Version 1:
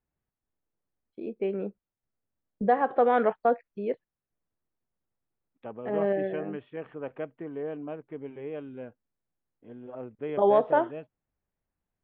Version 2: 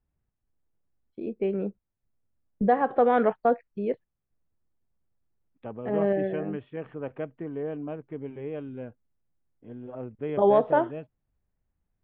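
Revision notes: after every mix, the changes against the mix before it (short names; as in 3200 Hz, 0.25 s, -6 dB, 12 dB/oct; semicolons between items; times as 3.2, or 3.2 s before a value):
master: add low shelf 170 Hz +11.5 dB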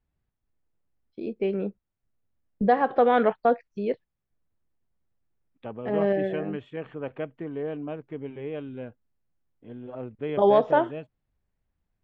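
master: remove air absorption 380 m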